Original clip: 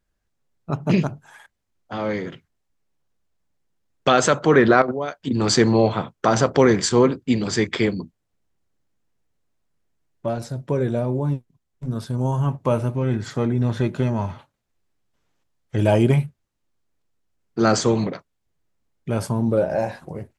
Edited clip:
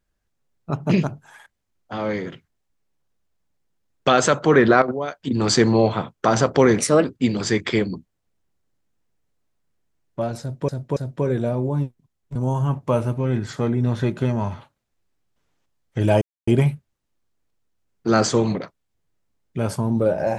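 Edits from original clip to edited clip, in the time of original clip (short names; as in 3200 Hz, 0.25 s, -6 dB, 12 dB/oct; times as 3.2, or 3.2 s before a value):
6.78–7.11 speed 125%
10.47–10.75 loop, 3 plays
11.86–12.13 cut
15.99 insert silence 0.26 s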